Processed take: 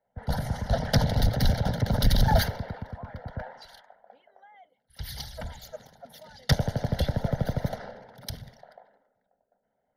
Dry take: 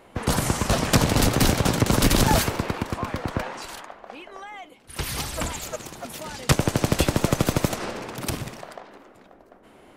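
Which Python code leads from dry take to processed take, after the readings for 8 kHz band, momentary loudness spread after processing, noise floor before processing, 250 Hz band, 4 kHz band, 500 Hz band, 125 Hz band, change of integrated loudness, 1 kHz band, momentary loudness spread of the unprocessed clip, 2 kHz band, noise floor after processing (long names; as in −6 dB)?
−15.0 dB, 19 LU, −52 dBFS, −8.0 dB, −6.5 dB, −6.5 dB, −2.0 dB, −4.5 dB, −7.0 dB, 20 LU, −8.5 dB, −78 dBFS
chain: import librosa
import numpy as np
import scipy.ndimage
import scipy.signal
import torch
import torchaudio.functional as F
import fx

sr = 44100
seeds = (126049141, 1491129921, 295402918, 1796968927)

y = fx.envelope_sharpen(x, sr, power=1.5)
y = fx.fixed_phaser(y, sr, hz=1700.0, stages=8)
y = fx.band_widen(y, sr, depth_pct=70)
y = y * librosa.db_to_amplitude(-2.5)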